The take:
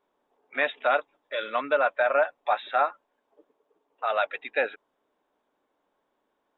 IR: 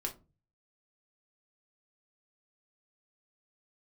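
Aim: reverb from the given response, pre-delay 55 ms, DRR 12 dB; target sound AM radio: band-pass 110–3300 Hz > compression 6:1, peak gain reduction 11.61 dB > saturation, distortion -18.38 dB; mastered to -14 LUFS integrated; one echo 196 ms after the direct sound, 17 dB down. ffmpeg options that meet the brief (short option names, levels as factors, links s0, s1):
-filter_complex "[0:a]aecho=1:1:196:0.141,asplit=2[s0][s1];[1:a]atrim=start_sample=2205,adelay=55[s2];[s1][s2]afir=irnorm=-1:irlink=0,volume=0.237[s3];[s0][s3]amix=inputs=2:normalize=0,highpass=110,lowpass=3300,acompressor=threshold=0.0355:ratio=6,asoftclip=threshold=0.0668,volume=12.6"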